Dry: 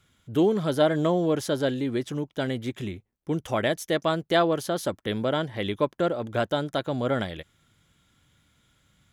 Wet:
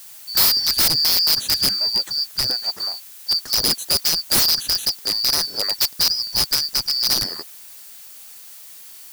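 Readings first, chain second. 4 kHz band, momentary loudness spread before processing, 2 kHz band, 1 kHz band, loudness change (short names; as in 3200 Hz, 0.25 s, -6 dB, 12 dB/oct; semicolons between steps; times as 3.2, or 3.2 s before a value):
+20.0 dB, 9 LU, +1.5 dB, -4.0 dB, +9.0 dB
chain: four-band scrambler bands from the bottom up 2341; bell 2200 Hz -13.5 dB 0.47 oct; wrapped overs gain 17.5 dB; added noise blue -48 dBFS; gain +7 dB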